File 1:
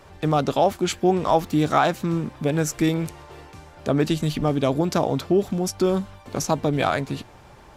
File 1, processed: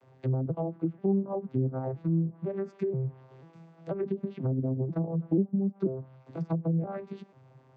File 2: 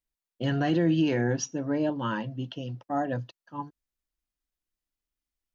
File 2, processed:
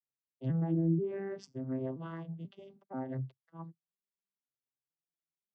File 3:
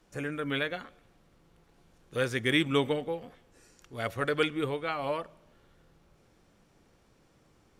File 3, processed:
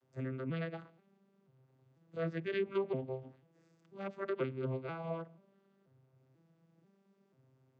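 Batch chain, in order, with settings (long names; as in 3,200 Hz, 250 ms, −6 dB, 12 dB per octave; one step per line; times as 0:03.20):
vocoder with an arpeggio as carrier major triad, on C3, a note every 488 ms
treble cut that deepens with the level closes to 460 Hz, closed at −18.5 dBFS
level −6.5 dB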